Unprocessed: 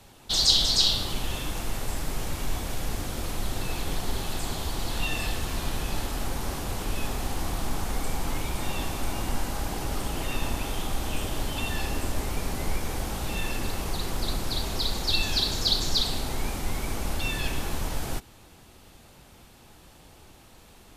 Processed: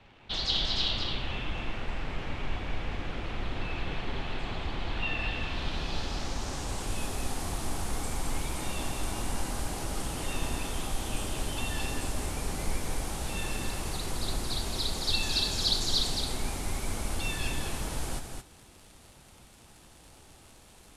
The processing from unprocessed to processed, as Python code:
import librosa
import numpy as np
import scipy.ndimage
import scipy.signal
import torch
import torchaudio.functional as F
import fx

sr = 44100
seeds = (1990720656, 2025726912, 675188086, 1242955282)

y = fx.dmg_crackle(x, sr, seeds[0], per_s=94.0, level_db=-39.0)
y = fx.filter_sweep_lowpass(y, sr, from_hz=2600.0, to_hz=10000.0, start_s=5.2, end_s=6.98, q=1.7)
y = y + 10.0 ** (-5.5 / 20.0) * np.pad(y, (int(218 * sr / 1000.0), 0))[:len(y)]
y = y * 10.0 ** (-4.5 / 20.0)